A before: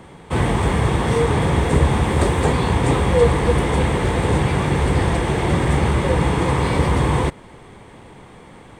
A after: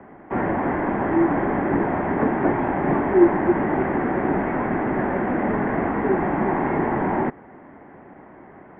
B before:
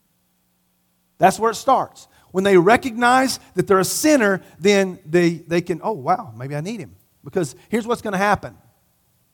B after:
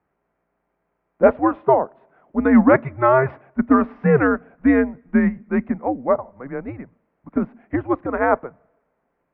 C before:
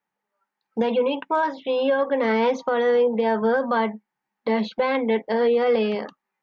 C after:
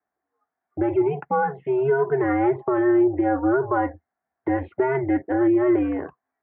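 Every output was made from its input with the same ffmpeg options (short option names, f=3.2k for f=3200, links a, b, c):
-af "aemphasis=mode=reproduction:type=bsi,highpass=f=340:t=q:w=0.5412,highpass=f=340:t=q:w=1.307,lowpass=f=2.2k:t=q:w=0.5176,lowpass=f=2.2k:t=q:w=0.7071,lowpass=f=2.2k:t=q:w=1.932,afreqshift=-130"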